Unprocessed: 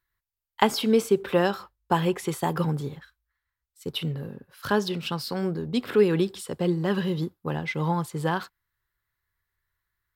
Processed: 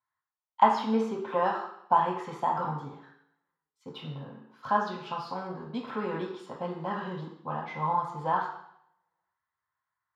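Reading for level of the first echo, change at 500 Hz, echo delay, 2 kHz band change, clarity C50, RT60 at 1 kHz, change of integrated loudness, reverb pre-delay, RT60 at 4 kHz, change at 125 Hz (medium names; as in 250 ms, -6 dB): no echo, -8.5 dB, no echo, -6.0 dB, 5.0 dB, 0.70 s, -4.0 dB, 3 ms, 0.70 s, -11.0 dB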